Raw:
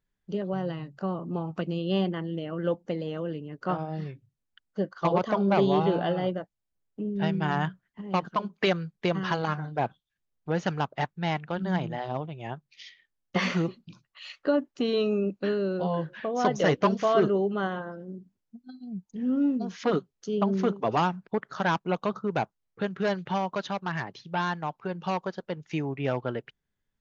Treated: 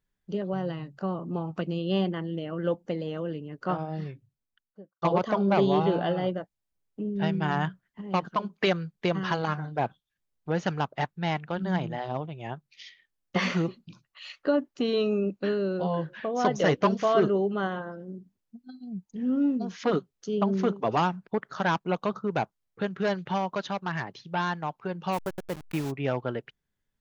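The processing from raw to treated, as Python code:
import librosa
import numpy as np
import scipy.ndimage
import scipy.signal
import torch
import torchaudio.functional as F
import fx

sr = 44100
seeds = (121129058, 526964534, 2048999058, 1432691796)

y = fx.studio_fade_out(x, sr, start_s=4.07, length_s=0.95)
y = fx.delta_hold(y, sr, step_db=-35.0, at=(25.12, 25.9), fade=0.02)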